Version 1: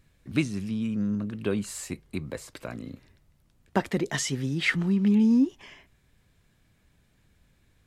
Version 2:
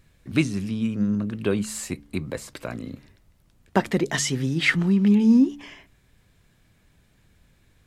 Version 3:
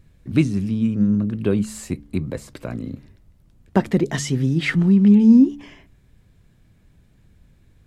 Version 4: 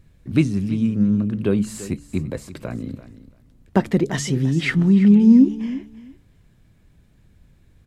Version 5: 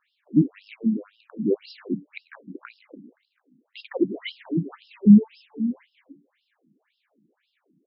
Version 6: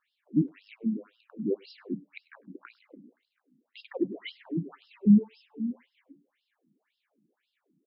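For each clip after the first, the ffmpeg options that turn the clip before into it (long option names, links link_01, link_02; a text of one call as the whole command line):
ffmpeg -i in.wav -af "bandreject=frequency=71.93:width_type=h:width=4,bandreject=frequency=143.86:width_type=h:width=4,bandreject=frequency=215.79:width_type=h:width=4,bandreject=frequency=287.72:width_type=h:width=4,volume=4.5dB" out.wav
ffmpeg -i in.wav -af "lowshelf=frequency=480:gain=10.5,volume=-3.5dB" out.wav
ffmpeg -i in.wav -af "aecho=1:1:339|678:0.168|0.0285" out.wav
ffmpeg -i in.wav -af "bandreject=frequency=60:width_type=h:width=6,bandreject=frequency=120:width_type=h:width=6,bandreject=frequency=180:width_type=h:width=6,afftfilt=real='re*between(b*sr/1024,230*pow(3900/230,0.5+0.5*sin(2*PI*1.9*pts/sr))/1.41,230*pow(3900/230,0.5+0.5*sin(2*PI*1.9*pts/sr))*1.41)':imag='im*between(b*sr/1024,230*pow(3900/230,0.5+0.5*sin(2*PI*1.9*pts/sr))/1.41,230*pow(3900/230,0.5+0.5*sin(2*PI*1.9*pts/sr))*1.41)':win_size=1024:overlap=0.75,volume=2.5dB" out.wav
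ffmpeg -i in.wav -filter_complex "[0:a]asplit=2[link_01][link_02];[link_02]adelay=100,highpass=300,lowpass=3400,asoftclip=type=hard:threshold=-13dB,volume=-27dB[link_03];[link_01][link_03]amix=inputs=2:normalize=0,volume=-6.5dB" out.wav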